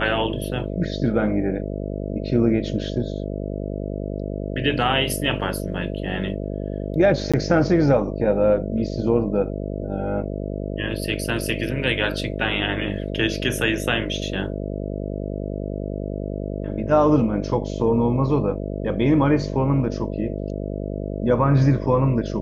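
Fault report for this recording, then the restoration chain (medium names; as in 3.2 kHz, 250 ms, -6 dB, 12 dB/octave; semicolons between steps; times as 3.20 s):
buzz 50 Hz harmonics 13 -28 dBFS
7.32–7.34 s: dropout 16 ms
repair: de-hum 50 Hz, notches 13; interpolate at 7.32 s, 16 ms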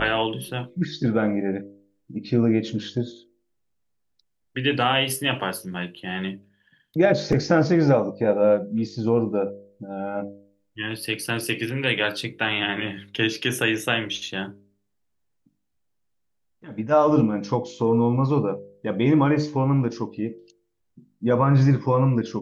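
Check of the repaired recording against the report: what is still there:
nothing left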